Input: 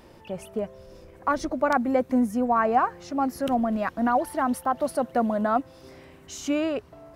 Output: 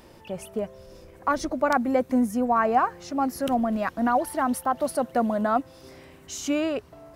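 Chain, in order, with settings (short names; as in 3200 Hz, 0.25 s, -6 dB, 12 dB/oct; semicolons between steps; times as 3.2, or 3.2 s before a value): high shelf 4300 Hz +5 dB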